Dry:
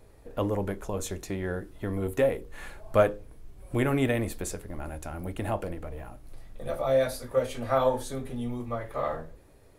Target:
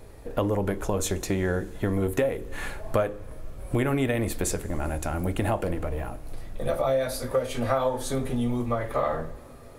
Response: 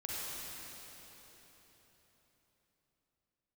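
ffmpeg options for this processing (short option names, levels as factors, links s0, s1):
-filter_complex "[0:a]acompressor=threshold=0.0316:ratio=6,asplit=2[s0][s1];[1:a]atrim=start_sample=2205,asetrate=40572,aresample=44100[s2];[s1][s2]afir=irnorm=-1:irlink=0,volume=0.075[s3];[s0][s3]amix=inputs=2:normalize=0,volume=2.51"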